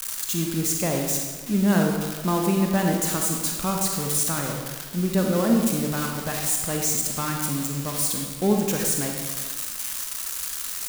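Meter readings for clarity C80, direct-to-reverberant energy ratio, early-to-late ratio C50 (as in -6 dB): 4.0 dB, 1.0 dB, 2.5 dB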